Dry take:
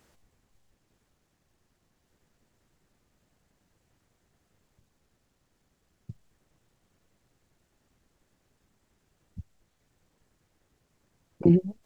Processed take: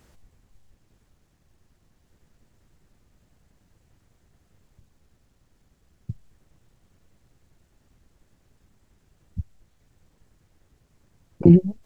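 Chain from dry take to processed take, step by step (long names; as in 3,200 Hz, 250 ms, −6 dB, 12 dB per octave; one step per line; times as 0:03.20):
low-shelf EQ 150 Hz +10 dB
level +3.5 dB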